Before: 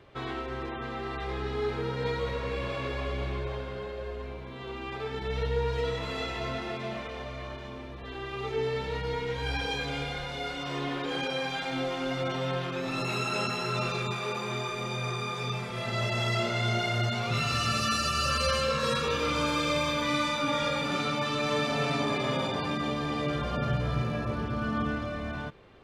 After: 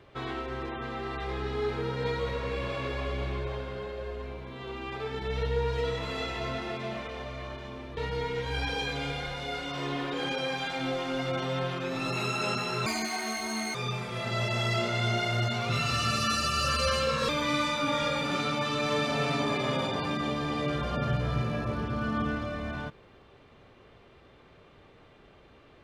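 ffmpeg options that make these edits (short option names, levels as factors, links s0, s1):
-filter_complex "[0:a]asplit=5[s0][s1][s2][s3][s4];[s0]atrim=end=7.972[s5];[s1]atrim=start=8.888:end=13.784[s6];[s2]atrim=start=13.78:end=15.36,asetpts=PTS-STARTPTS,asetrate=78498,aresample=44100[s7];[s3]atrim=start=15.356:end=18.902[s8];[s4]atrim=start=19.888[s9];[s5][s6]acrossfade=d=0.004:c1=hsin:c2=hsin[s10];[s10][s7]acrossfade=d=0.004:c1=hsin:c2=hsin[s11];[s11][s8]acrossfade=d=0.004:c1=hsin:c2=hsin[s12];[s12][s9]acrossfade=d=0.004:c1=hsin:c2=hsin"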